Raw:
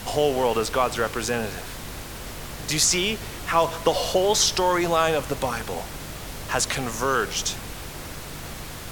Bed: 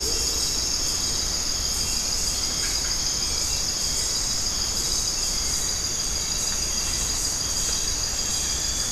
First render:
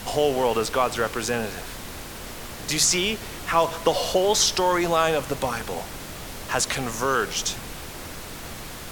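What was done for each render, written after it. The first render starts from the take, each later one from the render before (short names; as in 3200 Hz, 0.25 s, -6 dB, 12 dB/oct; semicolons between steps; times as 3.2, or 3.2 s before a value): de-hum 50 Hz, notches 3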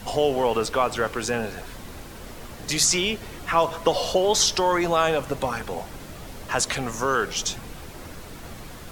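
denoiser 7 dB, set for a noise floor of -37 dBFS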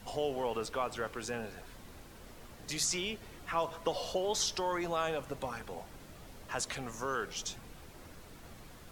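gain -12.5 dB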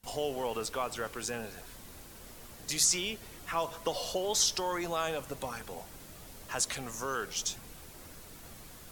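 high shelf 5300 Hz +11 dB; gate with hold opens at -41 dBFS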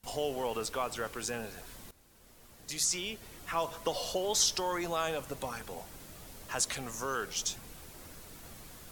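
1.91–3.63 fade in, from -16 dB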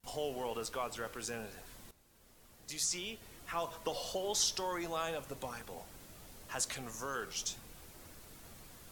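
flange 0.58 Hz, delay 8.3 ms, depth 1.4 ms, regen -87%; vibrato 2 Hz 38 cents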